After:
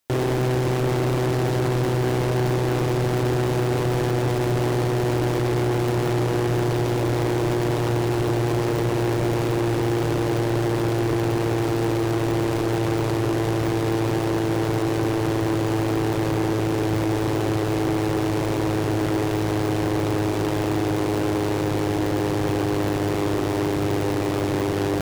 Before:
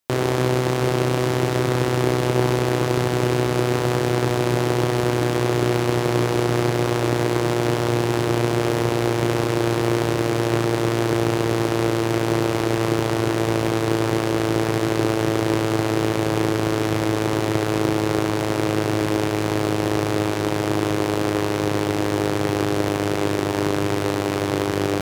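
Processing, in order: overloaded stage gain 22 dB; gain +3.5 dB

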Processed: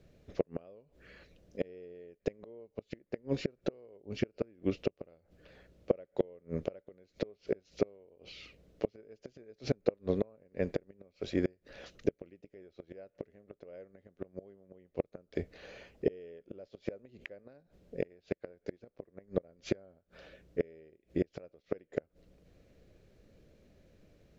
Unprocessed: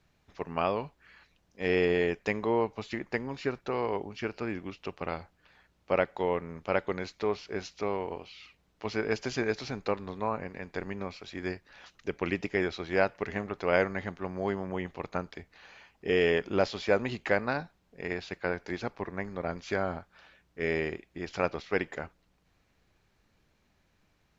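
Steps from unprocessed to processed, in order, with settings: flipped gate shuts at -24 dBFS, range -35 dB; resonant low shelf 700 Hz +8 dB, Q 3

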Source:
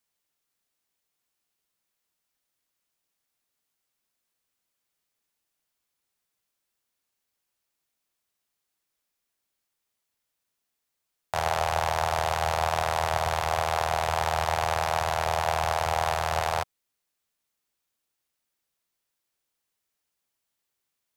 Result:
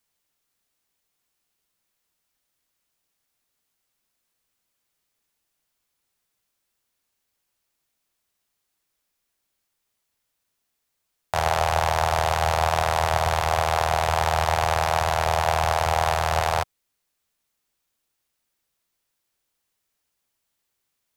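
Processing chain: low shelf 94 Hz +5 dB; gain +4 dB

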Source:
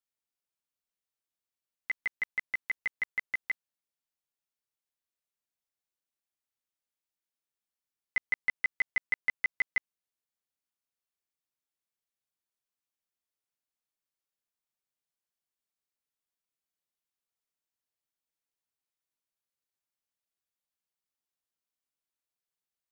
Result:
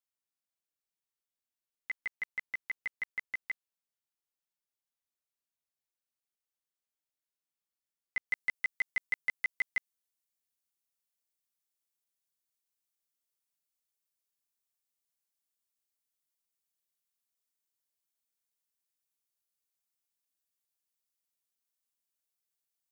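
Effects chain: high shelf 4200 Hz +3 dB, from 8.31 s +11.5 dB; gain -5 dB

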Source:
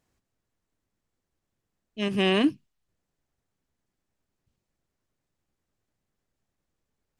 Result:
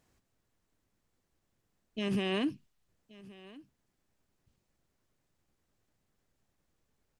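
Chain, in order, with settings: compressor, threshold -25 dBFS, peak gain reduction 8 dB; limiter -27 dBFS, peak gain reduction 9 dB; on a send: echo 1.125 s -20.5 dB; on the sum: gain +3 dB

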